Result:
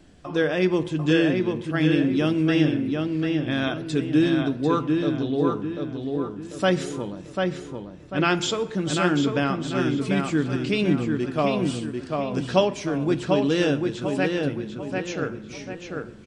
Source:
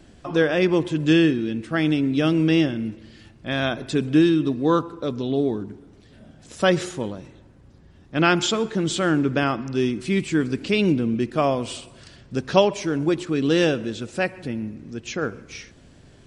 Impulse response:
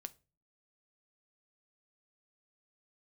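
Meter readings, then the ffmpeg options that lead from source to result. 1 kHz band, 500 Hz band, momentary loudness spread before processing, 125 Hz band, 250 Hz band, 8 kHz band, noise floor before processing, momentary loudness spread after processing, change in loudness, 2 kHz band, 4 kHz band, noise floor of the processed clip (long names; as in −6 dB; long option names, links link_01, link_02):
−1.5 dB, −1.5 dB, 13 LU, 0.0 dB, −1.0 dB, −3.0 dB, −51 dBFS, 10 LU, −1.5 dB, −1.5 dB, −2.0 dB, −40 dBFS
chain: -filter_complex "[0:a]asplit=2[link_01][link_02];[link_02]adelay=744,lowpass=frequency=3500:poles=1,volume=-3.5dB,asplit=2[link_03][link_04];[link_04]adelay=744,lowpass=frequency=3500:poles=1,volume=0.41,asplit=2[link_05][link_06];[link_06]adelay=744,lowpass=frequency=3500:poles=1,volume=0.41,asplit=2[link_07][link_08];[link_08]adelay=744,lowpass=frequency=3500:poles=1,volume=0.41,asplit=2[link_09][link_10];[link_10]adelay=744,lowpass=frequency=3500:poles=1,volume=0.41[link_11];[link_01][link_03][link_05][link_07][link_09][link_11]amix=inputs=6:normalize=0[link_12];[1:a]atrim=start_sample=2205[link_13];[link_12][link_13]afir=irnorm=-1:irlink=0,volume=1.5dB"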